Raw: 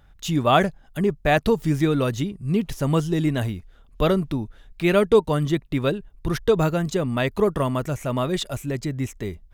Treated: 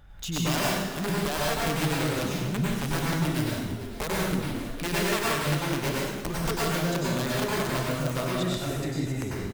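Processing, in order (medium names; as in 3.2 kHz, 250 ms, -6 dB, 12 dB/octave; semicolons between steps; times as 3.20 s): bass shelf 74 Hz +4 dB; compression 2.5:1, threshold -36 dBFS, peak gain reduction 16.5 dB; integer overflow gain 24.5 dB; on a send: frequency-shifting echo 450 ms, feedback 33%, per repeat +95 Hz, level -13.5 dB; on the sum: plate-style reverb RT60 1.1 s, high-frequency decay 0.9×, pre-delay 85 ms, DRR -5.5 dB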